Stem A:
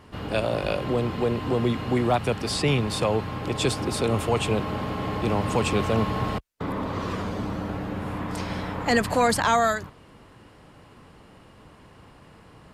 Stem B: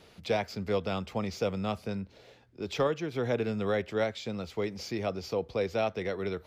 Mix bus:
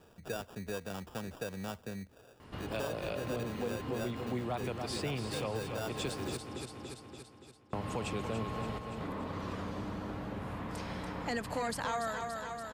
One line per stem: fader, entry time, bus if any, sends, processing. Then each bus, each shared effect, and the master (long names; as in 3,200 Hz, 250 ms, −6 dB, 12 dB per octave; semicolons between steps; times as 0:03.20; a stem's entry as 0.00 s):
−4.0 dB, 2.40 s, muted 0:06.37–0:07.73, no send, echo send −8 dB, no processing
−3.0 dB, 0.00 s, no send, no echo send, low-pass that shuts in the quiet parts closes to 2,300 Hz, open at −24 dBFS; sample-rate reduction 2,100 Hz, jitter 0%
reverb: not used
echo: repeating echo 286 ms, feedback 51%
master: downward compressor 2 to 1, threshold −41 dBFS, peak gain reduction 12 dB